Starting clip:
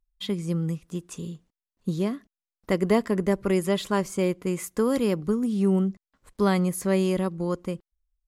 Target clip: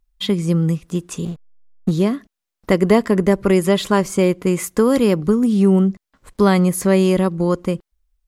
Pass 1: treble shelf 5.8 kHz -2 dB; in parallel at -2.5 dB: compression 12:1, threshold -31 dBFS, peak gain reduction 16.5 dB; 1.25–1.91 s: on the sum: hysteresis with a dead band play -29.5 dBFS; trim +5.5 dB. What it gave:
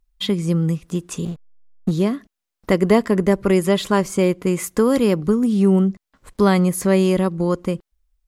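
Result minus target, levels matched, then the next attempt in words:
compression: peak gain reduction +7 dB
treble shelf 5.8 kHz -2 dB; in parallel at -2.5 dB: compression 12:1, threshold -23.5 dBFS, peak gain reduction 9.5 dB; 1.25–1.91 s: on the sum: hysteresis with a dead band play -29.5 dBFS; trim +5.5 dB

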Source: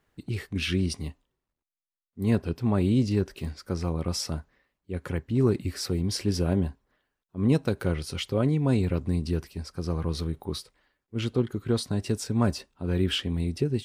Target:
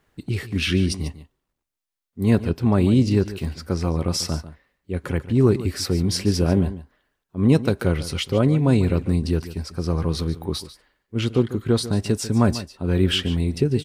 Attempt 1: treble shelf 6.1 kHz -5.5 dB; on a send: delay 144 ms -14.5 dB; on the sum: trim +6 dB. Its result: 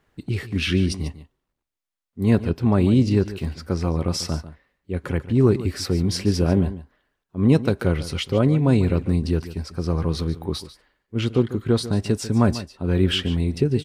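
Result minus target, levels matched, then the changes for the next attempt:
8 kHz band -3.0 dB
remove: treble shelf 6.1 kHz -5.5 dB

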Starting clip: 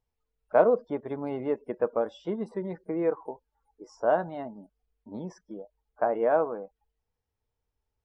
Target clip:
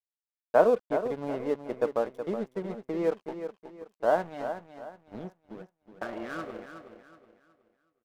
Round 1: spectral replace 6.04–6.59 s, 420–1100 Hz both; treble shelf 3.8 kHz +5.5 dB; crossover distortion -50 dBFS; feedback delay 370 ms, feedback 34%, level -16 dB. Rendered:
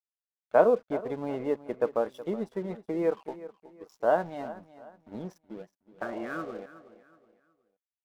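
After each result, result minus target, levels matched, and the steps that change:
echo-to-direct -6.5 dB; crossover distortion: distortion -6 dB
change: feedback delay 370 ms, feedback 34%, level -9.5 dB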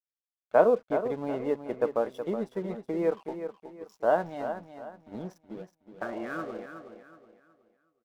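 crossover distortion: distortion -6 dB
change: crossover distortion -42.5 dBFS

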